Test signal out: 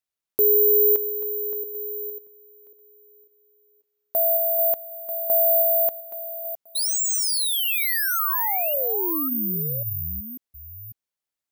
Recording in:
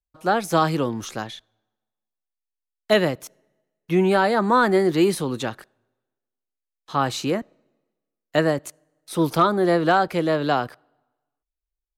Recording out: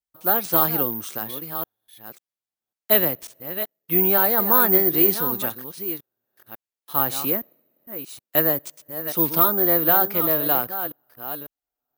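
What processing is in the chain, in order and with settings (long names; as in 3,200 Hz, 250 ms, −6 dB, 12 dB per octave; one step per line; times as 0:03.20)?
delay that plays each chunk backwards 546 ms, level −10.5 dB
high-pass filter 150 Hz 6 dB per octave
bad sample-rate conversion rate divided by 3×, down none, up zero stuff
level −4 dB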